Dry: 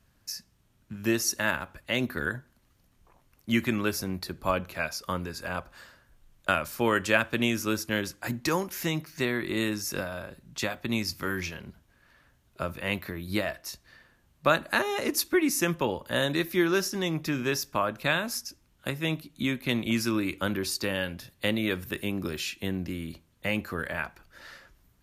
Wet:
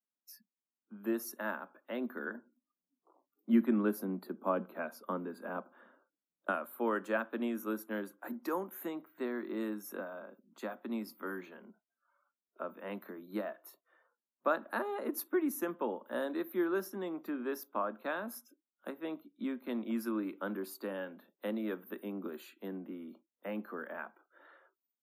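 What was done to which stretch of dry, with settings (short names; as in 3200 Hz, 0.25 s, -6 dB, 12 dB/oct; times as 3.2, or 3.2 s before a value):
2.34–6.5 low shelf 340 Hz +11 dB
whole clip: spectral noise reduction 26 dB; steep high-pass 200 Hz 72 dB/oct; band shelf 4200 Hz -15 dB 2.5 oct; gain -7 dB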